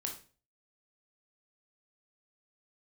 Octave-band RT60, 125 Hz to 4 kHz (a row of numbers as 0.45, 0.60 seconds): 0.55, 0.45, 0.40, 0.35, 0.35, 0.35 seconds